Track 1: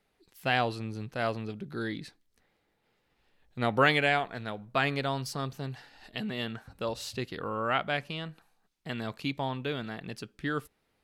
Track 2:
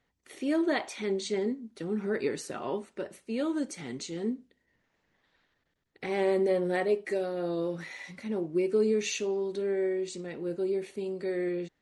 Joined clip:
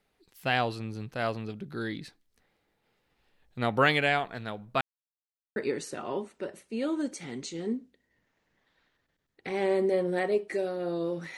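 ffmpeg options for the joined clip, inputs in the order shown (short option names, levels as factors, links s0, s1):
-filter_complex "[0:a]apad=whole_dur=11.37,atrim=end=11.37,asplit=2[s0][s1];[s0]atrim=end=4.81,asetpts=PTS-STARTPTS,afade=t=out:st=4.806:d=0.004:c=hsin[s2];[s1]atrim=start=4.81:end=5.56,asetpts=PTS-STARTPTS,volume=0[s3];[1:a]atrim=start=2.13:end=7.94,asetpts=PTS-STARTPTS,afade=t=in:d=0.004:c=hsin[s4];[s2][s3][s4]concat=n=3:v=0:a=1"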